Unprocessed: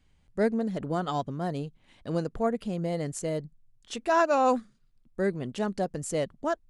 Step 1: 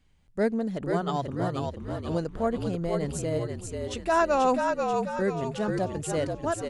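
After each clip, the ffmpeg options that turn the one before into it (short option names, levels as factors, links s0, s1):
-filter_complex "[0:a]asplit=7[s0][s1][s2][s3][s4][s5][s6];[s1]adelay=486,afreqshift=-50,volume=0.631[s7];[s2]adelay=972,afreqshift=-100,volume=0.302[s8];[s3]adelay=1458,afreqshift=-150,volume=0.145[s9];[s4]adelay=1944,afreqshift=-200,volume=0.07[s10];[s5]adelay=2430,afreqshift=-250,volume=0.0335[s11];[s6]adelay=2916,afreqshift=-300,volume=0.016[s12];[s0][s7][s8][s9][s10][s11][s12]amix=inputs=7:normalize=0"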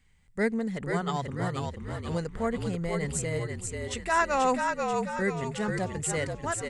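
-af "equalizer=f=315:t=o:w=0.33:g=-10,equalizer=f=630:t=o:w=0.33:g=-8,equalizer=f=2000:t=o:w=0.33:g=10,equalizer=f=8000:t=o:w=0.33:g=9"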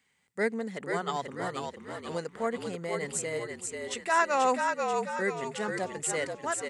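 -af "highpass=290"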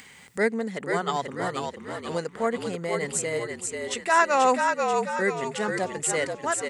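-af "acompressor=mode=upward:threshold=0.0112:ratio=2.5,volume=1.78"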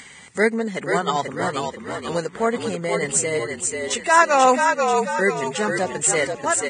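-af "volume=1.78" -ar 22050 -c:a libvorbis -b:a 16k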